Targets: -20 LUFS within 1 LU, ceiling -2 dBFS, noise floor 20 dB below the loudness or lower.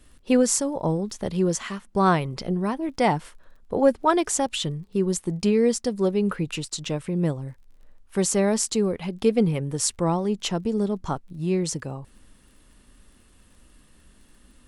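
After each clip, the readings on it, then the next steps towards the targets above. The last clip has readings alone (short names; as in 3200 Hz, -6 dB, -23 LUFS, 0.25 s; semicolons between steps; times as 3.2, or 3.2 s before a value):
ticks 29/s; loudness -24.5 LUFS; peak -7.0 dBFS; loudness target -20.0 LUFS
-> de-click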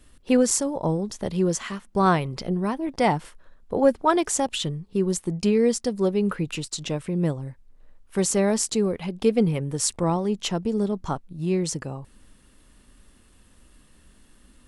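ticks 0/s; loudness -24.5 LUFS; peak -7.0 dBFS; loudness target -20.0 LUFS
-> gain +4.5 dB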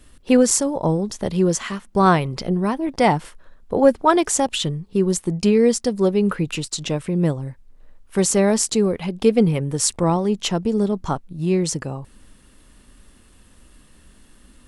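loudness -20.0 LUFS; peak -2.5 dBFS; noise floor -52 dBFS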